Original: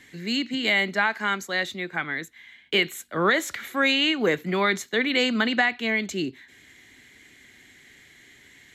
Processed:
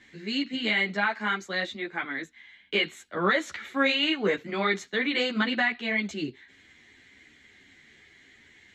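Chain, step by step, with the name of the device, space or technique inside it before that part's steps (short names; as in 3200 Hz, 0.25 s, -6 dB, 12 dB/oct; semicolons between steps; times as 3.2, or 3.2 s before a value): string-machine ensemble chorus (ensemble effect; LPF 5400 Hz 12 dB/oct)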